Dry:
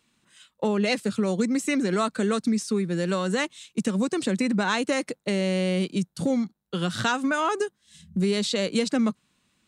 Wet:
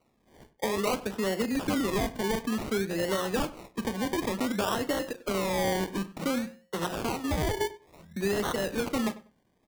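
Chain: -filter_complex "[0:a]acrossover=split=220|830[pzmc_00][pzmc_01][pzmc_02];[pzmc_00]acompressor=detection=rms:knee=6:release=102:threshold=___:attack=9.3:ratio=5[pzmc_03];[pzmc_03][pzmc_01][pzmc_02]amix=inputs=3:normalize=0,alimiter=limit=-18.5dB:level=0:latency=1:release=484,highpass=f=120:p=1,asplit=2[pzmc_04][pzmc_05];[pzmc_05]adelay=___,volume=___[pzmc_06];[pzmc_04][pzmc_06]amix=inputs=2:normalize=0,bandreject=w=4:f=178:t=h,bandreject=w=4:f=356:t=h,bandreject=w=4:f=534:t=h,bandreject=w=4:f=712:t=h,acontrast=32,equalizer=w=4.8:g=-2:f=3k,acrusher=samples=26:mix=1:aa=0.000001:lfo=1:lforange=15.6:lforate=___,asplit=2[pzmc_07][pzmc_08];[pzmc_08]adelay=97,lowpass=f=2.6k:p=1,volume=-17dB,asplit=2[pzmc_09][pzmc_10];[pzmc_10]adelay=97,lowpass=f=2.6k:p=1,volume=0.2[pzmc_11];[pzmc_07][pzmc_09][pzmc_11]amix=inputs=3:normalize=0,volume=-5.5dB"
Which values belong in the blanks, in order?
-44dB, 36, -13dB, 0.56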